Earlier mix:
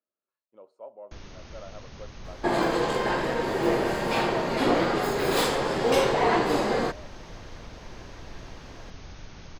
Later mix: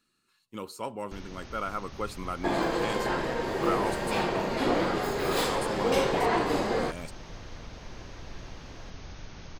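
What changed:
speech: remove resonant band-pass 610 Hz, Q 6.6
second sound −3.5 dB

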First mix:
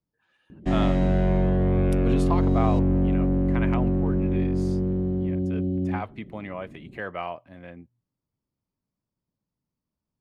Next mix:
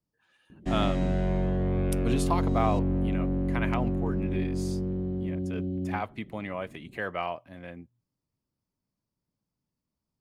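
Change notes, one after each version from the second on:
background −5.5 dB
master: remove low-pass filter 3,300 Hz 6 dB per octave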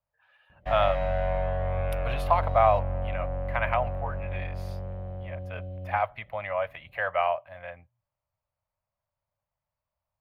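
master: add drawn EQ curve 100 Hz 0 dB, 230 Hz −20 dB, 380 Hz −20 dB, 580 Hz +9 dB, 960 Hz +6 dB, 1,700 Hz +5 dB, 2,500 Hz +4 dB, 4,600 Hz −7 dB, 7,900 Hz −21 dB, 13,000 Hz −1 dB

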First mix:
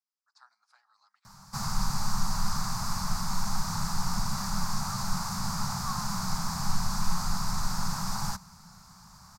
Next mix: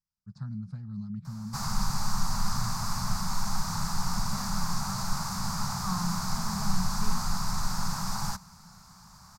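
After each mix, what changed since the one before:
speech: remove Butterworth high-pass 780 Hz 36 dB per octave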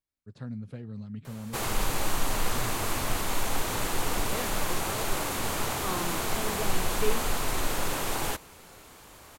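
master: remove drawn EQ curve 100 Hz 0 dB, 190 Hz +10 dB, 290 Hz −20 dB, 470 Hz −25 dB, 870 Hz −1 dB, 1,300 Hz 0 dB, 1,900 Hz −11 dB, 3,100 Hz −19 dB, 4,900 Hz +6 dB, 10,000 Hz −9 dB

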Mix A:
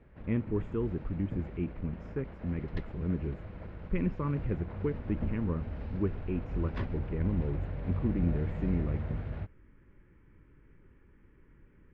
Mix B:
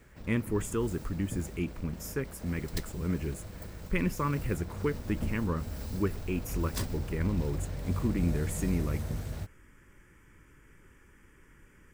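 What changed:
speech: add parametric band 1,700 Hz +10 dB 2.3 octaves
master: remove low-pass filter 2,600 Hz 24 dB per octave

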